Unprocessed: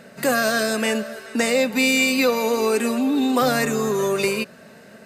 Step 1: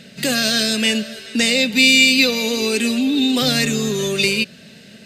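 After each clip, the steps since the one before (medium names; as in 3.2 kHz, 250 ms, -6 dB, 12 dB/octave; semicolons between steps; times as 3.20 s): FFT filter 180 Hz 0 dB, 1.1 kHz -16 dB, 3.3 kHz +8 dB, 12 kHz -6 dB; trim +6 dB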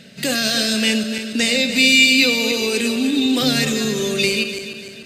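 backward echo that repeats 148 ms, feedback 64%, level -8.5 dB; trim -1.5 dB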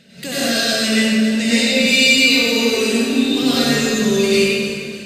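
plate-style reverb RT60 1.7 s, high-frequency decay 0.5×, pre-delay 80 ms, DRR -9.5 dB; trim -7 dB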